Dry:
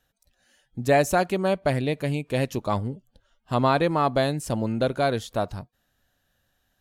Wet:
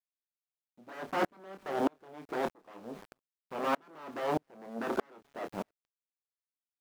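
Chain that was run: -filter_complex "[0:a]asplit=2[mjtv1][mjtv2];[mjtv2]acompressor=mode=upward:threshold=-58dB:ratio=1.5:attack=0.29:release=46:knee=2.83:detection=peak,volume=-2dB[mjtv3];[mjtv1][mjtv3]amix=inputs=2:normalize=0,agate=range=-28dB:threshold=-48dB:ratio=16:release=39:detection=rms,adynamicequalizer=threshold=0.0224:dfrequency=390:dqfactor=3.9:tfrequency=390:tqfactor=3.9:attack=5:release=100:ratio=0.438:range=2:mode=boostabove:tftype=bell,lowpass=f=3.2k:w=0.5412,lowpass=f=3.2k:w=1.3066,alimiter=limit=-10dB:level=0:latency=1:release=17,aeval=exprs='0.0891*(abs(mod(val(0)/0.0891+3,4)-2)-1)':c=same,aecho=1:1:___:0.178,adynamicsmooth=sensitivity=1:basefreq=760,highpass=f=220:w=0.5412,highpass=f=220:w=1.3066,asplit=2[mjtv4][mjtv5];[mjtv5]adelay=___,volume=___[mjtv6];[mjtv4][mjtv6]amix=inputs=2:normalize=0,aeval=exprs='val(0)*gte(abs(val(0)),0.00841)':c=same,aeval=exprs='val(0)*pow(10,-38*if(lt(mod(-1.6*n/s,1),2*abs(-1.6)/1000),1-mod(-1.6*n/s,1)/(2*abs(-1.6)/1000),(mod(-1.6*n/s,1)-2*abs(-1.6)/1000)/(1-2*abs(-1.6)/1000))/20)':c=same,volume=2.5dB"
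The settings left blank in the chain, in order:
260, 26, -7.5dB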